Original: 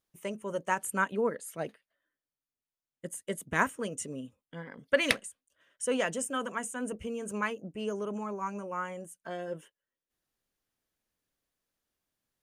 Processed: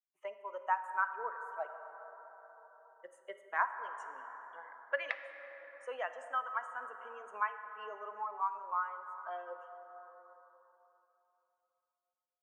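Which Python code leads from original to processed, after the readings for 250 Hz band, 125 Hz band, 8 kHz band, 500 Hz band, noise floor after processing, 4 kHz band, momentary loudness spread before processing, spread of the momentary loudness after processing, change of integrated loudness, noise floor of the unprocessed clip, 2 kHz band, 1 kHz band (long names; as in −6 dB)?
below −30 dB, below −40 dB, below −25 dB, −11.0 dB, below −85 dBFS, −17.0 dB, 14 LU, 19 LU, −6.0 dB, below −85 dBFS, −5.5 dB, 0.0 dB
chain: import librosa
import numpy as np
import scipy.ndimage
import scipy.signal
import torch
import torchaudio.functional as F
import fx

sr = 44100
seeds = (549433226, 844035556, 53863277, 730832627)

p1 = fx.bin_expand(x, sr, power=1.5)
p2 = scipy.signal.sosfilt(scipy.signal.butter(2, 1100.0, 'lowpass', fs=sr, output='sos'), p1)
p3 = fx.rider(p2, sr, range_db=4, speed_s=0.5)
p4 = p2 + F.gain(torch.from_numpy(p3), 0.0).numpy()
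p5 = scipy.signal.sosfilt(scipy.signal.butter(4, 840.0, 'highpass', fs=sr, output='sos'), p4)
p6 = fx.rev_plate(p5, sr, seeds[0], rt60_s=3.0, hf_ratio=0.45, predelay_ms=0, drr_db=9.0)
p7 = fx.band_squash(p6, sr, depth_pct=40)
y = F.gain(torch.from_numpy(p7), 1.0).numpy()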